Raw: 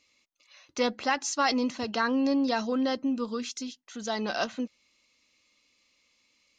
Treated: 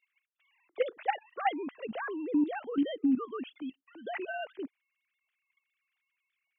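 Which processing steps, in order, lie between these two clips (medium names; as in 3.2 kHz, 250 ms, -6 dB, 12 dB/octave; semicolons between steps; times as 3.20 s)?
formants replaced by sine waves; level held to a coarse grid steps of 12 dB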